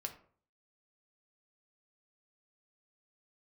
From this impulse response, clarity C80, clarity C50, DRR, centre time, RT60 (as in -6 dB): 15.5 dB, 11.5 dB, 3.5 dB, 11 ms, 0.50 s